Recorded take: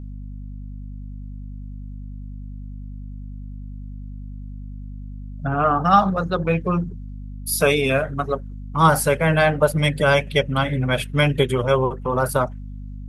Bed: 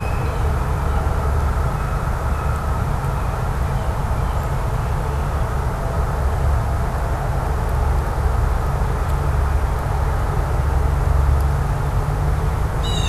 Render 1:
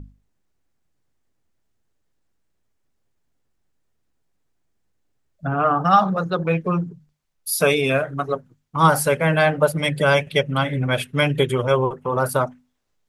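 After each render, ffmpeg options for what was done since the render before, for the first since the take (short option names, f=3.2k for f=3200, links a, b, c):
-af "bandreject=f=50:t=h:w=6,bandreject=f=100:t=h:w=6,bandreject=f=150:t=h:w=6,bandreject=f=200:t=h:w=6,bandreject=f=250:t=h:w=6"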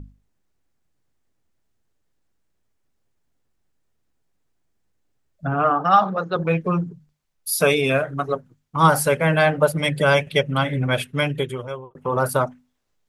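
-filter_complex "[0:a]asettb=1/sr,asplit=3[a][b][c];[a]atrim=end=5.704[d];[b]atrim=start=5.7:end=6.36,asetpts=PTS-STARTPTS,afade=t=in:d=0.004:c=qsin,afade=t=out:st=0.656:d=0.004:c=qsin,highpass=240,lowpass=4.8k[e];[c]atrim=start=6.356[f];[d][e]acrossfade=d=0.004:c1=hsin:c2=qsin[g];[g][f]acrossfade=d=0.004:c1=qsin:c2=hsin,asplit=2[h][i];[h]atrim=end=11.95,asetpts=PTS-STARTPTS,afade=t=out:st=10.95:d=1[j];[i]atrim=start=11.95,asetpts=PTS-STARTPTS,afade=t=in:d=0.004:c=hsin[k];[j][k]concat=n=2:v=0:a=1"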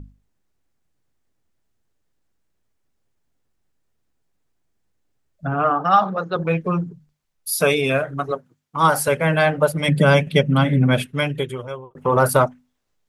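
-filter_complex "[0:a]asettb=1/sr,asplit=3[a][b][c];[a]atrim=end=8.314[d];[b]atrim=start=8.31:end=9.08,asetpts=PTS-STARTPTS,afade=t=in:d=0.004:c=qsin,afade=t=out:st=0.766:d=0.004:c=qsin,highpass=f=250:p=1[e];[c]atrim=start=9.076[f];[d][e]acrossfade=d=0.004:c1=hsin:c2=qsin[g];[g][f]acrossfade=d=0.004:c1=qsin:c2=hsin,asettb=1/sr,asplit=3[h][i][j];[h]atrim=end=9.884[k];[i]atrim=start=9.88:end=11.06,asetpts=PTS-STARTPTS,afade=t=in:d=0.004:c=qsin,afade=t=out:st=1.176:d=0.004:c=qsin,equalizer=f=200:w=1.3:g=13.5[l];[j]atrim=start=11.056[m];[k][l]acrossfade=d=0.004:c1=hsin:c2=qsin[n];[n][m]acrossfade=d=0.004:c1=qsin:c2=hsin,asplit=3[o][p][q];[o]afade=t=out:st=11.96:d=0.02[r];[p]acontrast=32,afade=t=in:st=11.96:d=0.02,afade=t=out:st=12.46:d=0.02[s];[q]afade=t=in:st=12.46:d=0.02[t];[r][s][t]amix=inputs=3:normalize=0"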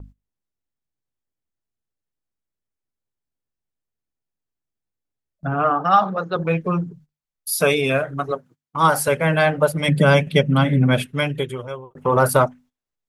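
-af "agate=range=-15dB:threshold=-45dB:ratio=16:detection=peak"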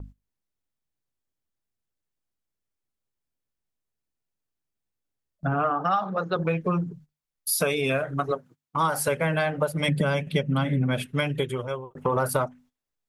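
-af "acompressor=threshold=-21dB:ratio=6"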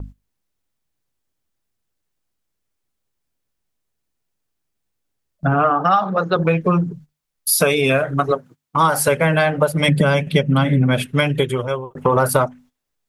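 -af "volume=8.5dB"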